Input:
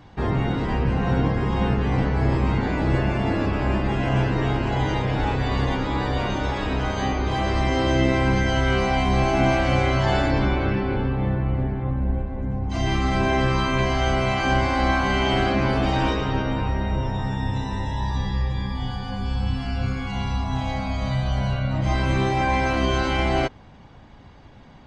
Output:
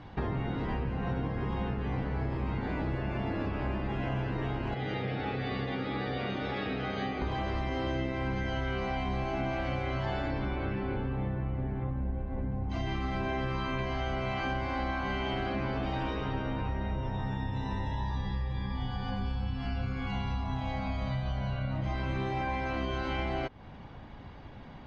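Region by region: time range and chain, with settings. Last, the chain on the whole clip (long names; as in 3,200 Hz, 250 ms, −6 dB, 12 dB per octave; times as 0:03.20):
0:04.74–0:07.22: Butterworth band-reject 1,000 Hz, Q 5.3 + loudspeaker in its box 160–5,100 Hz, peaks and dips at 310 Hz −6 dB, 620 Hz −6 dB, 930 Hz −7 dB, 1,500 Hz −5 dB, 2,900 Hz −3 dB
whole clip: downward compressor, threshold −30 dBFS; low-pass filter 4,000 Hz 12 dB per octave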